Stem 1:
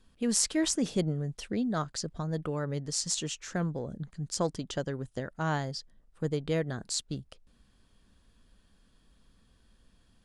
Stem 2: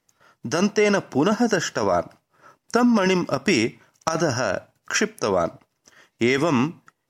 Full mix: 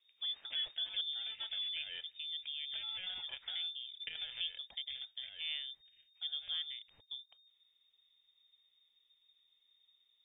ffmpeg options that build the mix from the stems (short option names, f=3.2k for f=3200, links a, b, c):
-filter_complex "[0:a]lowpass=f=1.5k:p=1,volume=-10dB,asplit=2[a][b];[1:a]acompressor=threshold=-31dB:ratio=3,acrusher=samples=17:mix=1:aa=0.000001,volume=-13dB,afade=t=out:st=4.53:d=0.24:silence=0.375837[c];[b]apad=whole_len=312799[d];[c][d]sidechaincompress=threshold=-43dB:ratio=8:attack=20:release=241[e];[a][e]amix=inputs=2:normalize=0,lowpass=f=3.1k:t=q:w=0.5098,lowpass=f=3.1k:t=q:w=0.6013,lowpass=f=3.1k:t=q:w=0.9,lowpass=f=3.1k:t=q:w=2.563,afreqshift=-3700,asubboost=boost=4:cutoff=140"